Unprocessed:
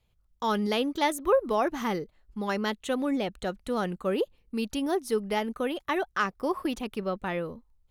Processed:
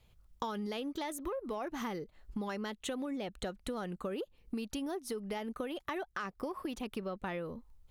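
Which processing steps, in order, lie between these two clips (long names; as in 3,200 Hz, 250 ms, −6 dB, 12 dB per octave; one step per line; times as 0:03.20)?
in parallel at −7.5 dB: soft clipping −22.5 dBFS, distortion −14 dB
on the sum: brickwall limiter −18 dBFS, peak gain reduction 6 dB
downward compressor 16 to 1, threshold −38 dBFS, peak gain reduction 17.5 dB
level +3 dB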